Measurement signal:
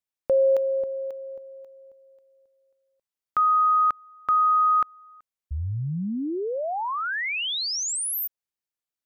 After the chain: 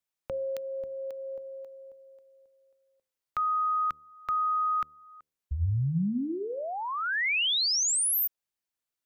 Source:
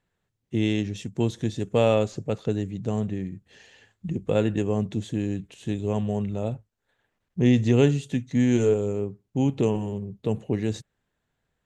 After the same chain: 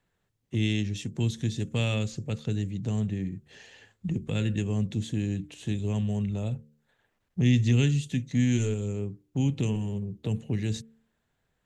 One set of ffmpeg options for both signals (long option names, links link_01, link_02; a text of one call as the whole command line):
ffmpeg -i in.wav -filter_complex "[0:a]acrossover=split=220|1800[link_01][link_02][link_03];[link_02]acompressor=threshold=-34dB:ratio=10:attack=0.8:release=837:knee=2.83:detection=peak[link_04];[link_01][link_04][link_03]amix=inputs=3:normalize=0,bandreject=frequency=74.9:width_type=h:width=4,bandreject=frequency=149.8:width_type=h:width=4,bandreject=frequency=224.7:width_type=h:width=4,bandreject=frequency=299.6:width_type=h:width=4,bandreject=frequency=374.5:width_type=h:width=4,bandreject=frequency=449.4:width_type=h:width=4,bandreject=frequency=524.3:width_type=h:width=4,volume=1.5dB" out.wav